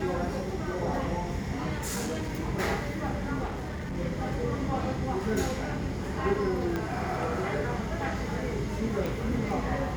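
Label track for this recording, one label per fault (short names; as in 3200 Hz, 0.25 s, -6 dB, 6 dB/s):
1.730000	2.340000	clipped -28.5 dBFS
3.450000	3.980000	clipped -31.5 dBFS
6.760000	6.760000	pop -18 dBFS
9.060000	9.060000	pop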